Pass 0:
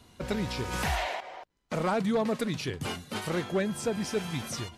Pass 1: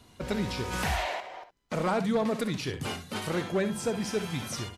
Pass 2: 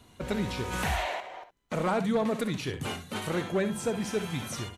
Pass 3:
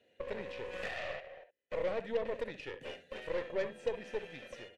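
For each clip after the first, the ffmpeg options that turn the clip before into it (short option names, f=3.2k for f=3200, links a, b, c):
-af "aecho=1:1:60|70:0.237|0.211"
-af "equalizer=f=5k:w=4.6:g=-7"
-filter_complex "[0:a]asplit=3[a][b][c];[a]bandpass=f=530:t=q:w=8,volume=0dB[d];[b]bandpass=f=1.84k:t=q:w=8,volume=-6dB[e];[c]bandpass=f=2.48k:t=q:w=8,volume=-9dB[f];[d][e][f]amix=inputs=3:normalize=0,aeval=exprs='0.0531*(cos(1*acos(clip(val(0)/0.0531,-1,1)))-cos(1*PI/2))+0.00473*(cos(8*acos(clip(val(0)/0.0531,-1,1)))-cos(8*PI/2))':c=same,volume=2.5dB"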